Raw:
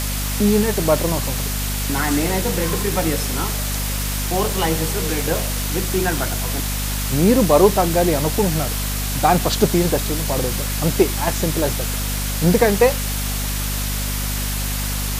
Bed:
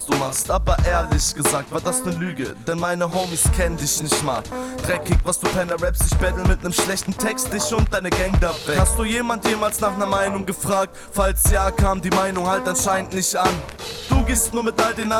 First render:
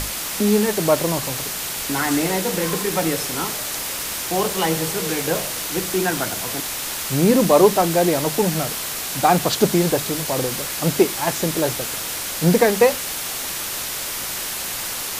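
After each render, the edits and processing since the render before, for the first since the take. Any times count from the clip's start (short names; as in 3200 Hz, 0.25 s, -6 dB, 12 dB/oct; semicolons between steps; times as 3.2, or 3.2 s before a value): notches 50/100/150/200/250 Hz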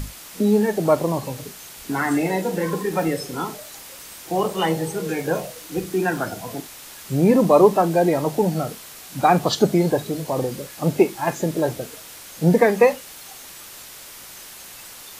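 noise print and reduce 13 dB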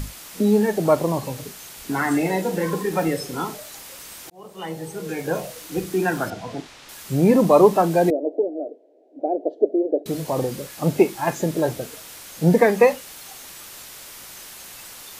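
4.3–5.55 fade in linear; 6.3–6.89 LPF 4700 Hz; 8.1–10.06 elliptic band-pass 290–650 Hz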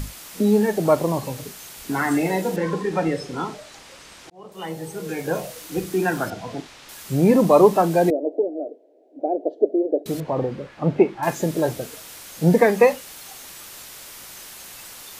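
2.56–4.52 air absorption 80 m; 10.2–11.23 LPF 2200 Hz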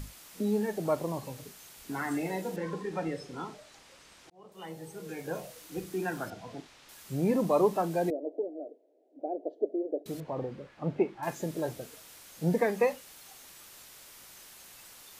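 gain -11.5 dB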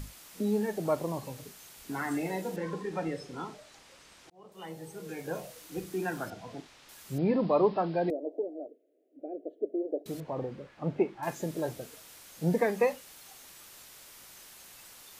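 7.18–8.1 steep low-pass 5000 Hz 96 dB/oct; 8.66–9.74 fixed phaser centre 2200 Hz, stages 4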